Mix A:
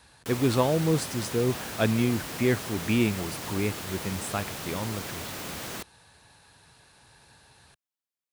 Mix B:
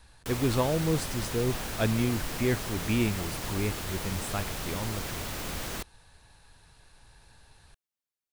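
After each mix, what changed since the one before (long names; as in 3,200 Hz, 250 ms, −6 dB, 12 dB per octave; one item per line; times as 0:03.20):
speech −3.5 dB
master: remove high-pass filter 110 Hz 12 dB per octave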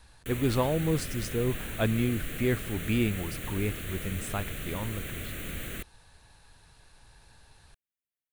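background: add phaser with its sweep stopped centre 2,200 Hz, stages 4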